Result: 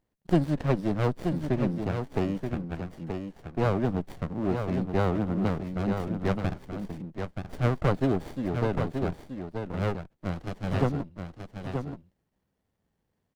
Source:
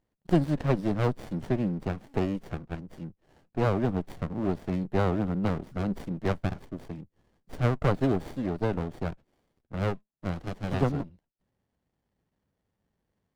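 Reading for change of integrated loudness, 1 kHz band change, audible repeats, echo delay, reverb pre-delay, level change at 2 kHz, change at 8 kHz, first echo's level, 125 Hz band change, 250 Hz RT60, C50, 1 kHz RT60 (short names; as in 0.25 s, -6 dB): 0.0 dB, +1.0 dB, 1, 0.928 s, none, +1.0 dB, n/a, -6.5 dB, +1.0 dB, none, none, none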